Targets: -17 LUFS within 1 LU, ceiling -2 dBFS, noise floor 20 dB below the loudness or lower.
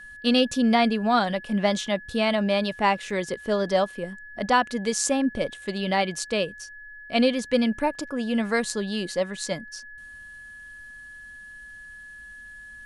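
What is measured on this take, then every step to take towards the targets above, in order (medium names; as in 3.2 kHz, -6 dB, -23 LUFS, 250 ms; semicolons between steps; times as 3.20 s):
dropouts 1; longest dropout 4.3 ms; steady tone 1.7 kHz; tone level -41 dBFS; loudness -25.0 LUFS; peak level -7.5 dBFS; loudness target -17.0 LUFS
-> interpolate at 3.10 s, 4.3 ms; band-stop 1.7 kHz, Q 30; trim +8 dB; peak limiter -2 dBFS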